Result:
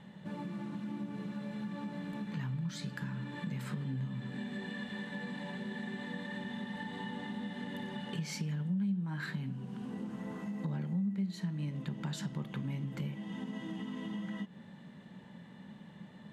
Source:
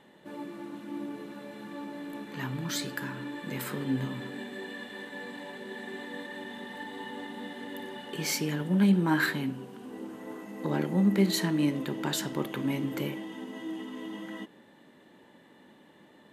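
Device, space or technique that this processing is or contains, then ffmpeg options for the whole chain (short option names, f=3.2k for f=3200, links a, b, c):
jukebox: -af "lowpass=7.6k,lowshelf=f=240:t=q:w=3:g=8.5,acompressor=threshold=-37dB:ratio=4"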